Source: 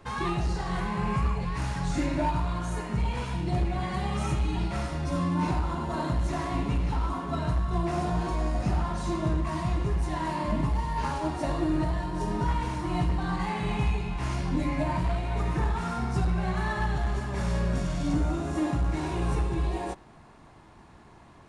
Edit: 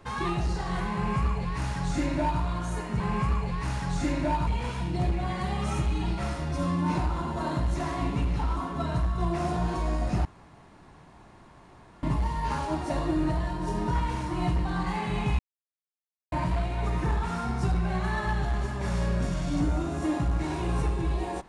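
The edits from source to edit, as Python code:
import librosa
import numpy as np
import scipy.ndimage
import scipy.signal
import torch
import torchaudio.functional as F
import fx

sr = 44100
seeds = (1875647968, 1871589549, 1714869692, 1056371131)

y = fx.edit(x, sr, fx.duplicate(start_s=0.94, length_s=1.47, to_s=3.0),
    fx.room_tone_fill(start_s=8.78, length_s=1.78),
    fx.silence(start_s=13.92, length_s=0.93), tone=tone)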